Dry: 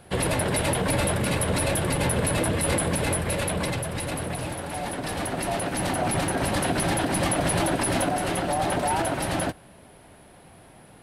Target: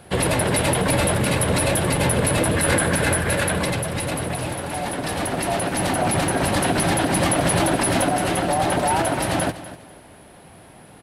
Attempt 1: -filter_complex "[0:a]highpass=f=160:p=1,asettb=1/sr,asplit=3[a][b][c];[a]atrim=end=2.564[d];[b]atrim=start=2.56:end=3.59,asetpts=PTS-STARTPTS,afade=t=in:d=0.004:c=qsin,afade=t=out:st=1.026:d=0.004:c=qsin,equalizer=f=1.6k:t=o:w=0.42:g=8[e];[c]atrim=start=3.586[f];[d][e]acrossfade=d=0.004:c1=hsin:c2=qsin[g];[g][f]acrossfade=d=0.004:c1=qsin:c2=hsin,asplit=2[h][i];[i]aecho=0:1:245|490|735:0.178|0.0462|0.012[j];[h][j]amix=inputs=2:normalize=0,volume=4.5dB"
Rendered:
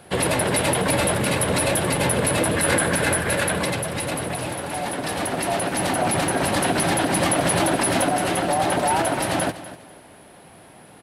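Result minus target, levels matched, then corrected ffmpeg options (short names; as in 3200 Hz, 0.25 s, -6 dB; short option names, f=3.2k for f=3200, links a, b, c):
125 Hz band -3.0 dB
-filter_complex "[0:a]highpass=f=41:p=1,asettb=1/sr,asplit=3[a][b][c];[a]atrim=end=2.564[d];[b]atrim=start=2.56:end=3.59,asetpts=PTS-STARTPTS,afade=t=in:d=0.004:c=qsin,afade=t=out:st=1.026:d=0.004:c=qsin,equalizer=f=1.6k:t=o:w=0.42:g=8[e];[c]atrim=start=3.586[f];[d][e]acrossfade=d=0.004:c1=hsin:c2=qsin[g];[g][f]acrossfade=d=0.004:c1=qsin:c2=hsin,asplit=2[h][i];[i]aecho=0:1:245|490|735:0.178|0.0462|0.012[j];[h][j]amix=inputs=2:normalize=0,volume=4.5dB"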